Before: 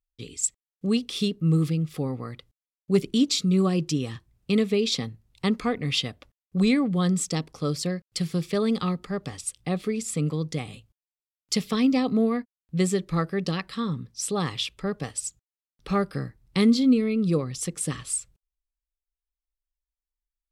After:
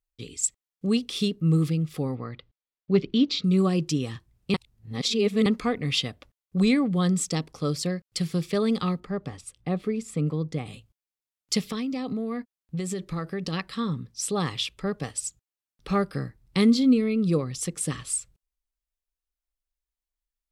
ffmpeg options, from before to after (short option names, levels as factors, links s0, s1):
-filter_complex "[0:a]asettb=1/sr,asplit=3[s0][s1][s2];[s0]atrim=end=2.154[s3];[s1]atrim=start=2.15:end=3.44,asetpts=PTS-STARTPTS,afade=t=in:d=0.004:c=qsin,afade=t=out:st=1.286:d=0.004:c=qsin,lowpass=f=4400:w=0.5412,lowpass=f=4400:w=1.3066[s4];[s2]atrim=start=3.436[s5];[s3][s4]acrossfade=d=0.004:c1=hsin:c2=qsin[s6];[s6][s5]acrossfade=d=0.004:c1=qsin:c2=hsin,asettb=1/sr,asplit=3[s7][s8][s9];[s7]atrim=end=9.004[s10];[s8]atrim=start=9:end=10.66,asetpts=PTS-STARTPTS,afade=t=in:d=0.004:c=qsin,afade=t=out:st=1.656:d=0.004:c=qsin,highshelf=f=2700:g=-11.5[s11];[s9]atrim=start=10.656[s12];[s10][s11]acrossfade=d=0.004:c1=hsin:c2=qsin[s13];[s13][s12]acrossfade=d=0.004:c1=qsin:c2=hsin,asplit=3[s14][s15][s16];[s14]afade=t=out:st=11.6:d=0.02[s17];[s15]acompressor=threshold=0.0501:ratio=12:attack=3.2:release=140:knee=1:detection=peak,afade=t=in:st=11.6:d=0.02,afade=t=out:st=13.52:d=0.02[s18];[s16]afade=t=in:st=13.52:d=0.02[s19];[s17][s18][s19]amix=inputs=3:normalize=0,asplit=3[s20][s21][s22];[s20]atrim=end=4.542[s23];[s21]atrim=start=4.538:end=5.462,asetpts=PTS-STARTPTS,areverse[s24];[s22]atrim=start=5.458[s25];[s23][s24]acrossfade=d=0.004:c1=hsin:c2=hsin[s26];[s26][s25]acrossfade=d=0.004:c1=hsin:c2=hsin"